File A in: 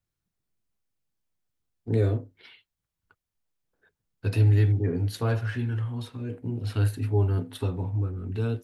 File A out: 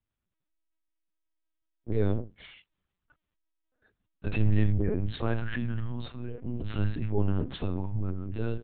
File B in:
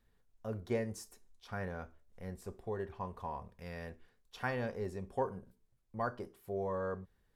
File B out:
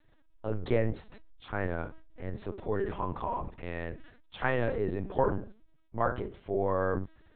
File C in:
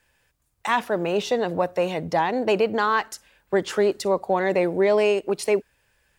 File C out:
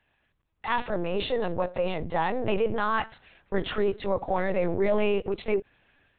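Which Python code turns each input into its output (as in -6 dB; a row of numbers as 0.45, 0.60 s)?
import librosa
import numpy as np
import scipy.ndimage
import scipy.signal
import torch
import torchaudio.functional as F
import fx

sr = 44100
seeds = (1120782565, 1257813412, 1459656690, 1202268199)

y = fx.transient(x, sr, attack_db=-1, sustain_db=7)
y = fx.lpc_vocoder(y, sr, seeds[0], excitation='pitch_kept', order=10)
y = y * 10.0 ** (-12 / 20.0) / np.max(np.abs(y))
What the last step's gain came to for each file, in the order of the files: -2.0, +7.5, -4.5 dB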